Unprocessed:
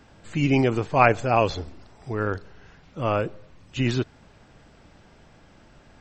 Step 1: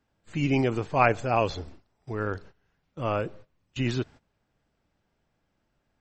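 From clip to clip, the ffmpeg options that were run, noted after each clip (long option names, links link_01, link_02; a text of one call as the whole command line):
ffmpeg -i in.wav -af "agate=range=-18dB:threshold=-41dB:ratio=16:detection=peak,volume=-4dB" out.wav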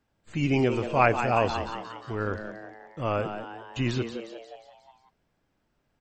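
ffmpeg -i in.wav -filter_complex "[0:a]asplit=7[link_01][link_02][link_03][link_04][link_05][link_06][link_07];[link_02]adelay=178,afreqshift=110,volume=-9dB[link_08];[link_03]adelay=356,afreqshift=220,volume=-14.2dB[link_09];[link_04]adelay=534,afreqshift=330,volume=-19.4dB[link_10];[link_05]adelay=712,afreqshift=440,volume=-24.6dB[link_11];[link_06]adelay=890,afreqshift=550,volume=-29.8dB[link_12];[link_07]adelay=1068,afreqshift=660,volume=-35dB[link_13];[link_01][link_08][link_09][link_10][link_11][link_12][link_13]amix=inputs=7:normalize=0" out.wav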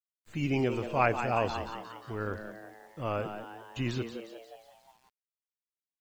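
ffmpeg -i in.wav -af "acrusher=bits=9:mix=0:aa=0.000001,volume=-5dB" out.wav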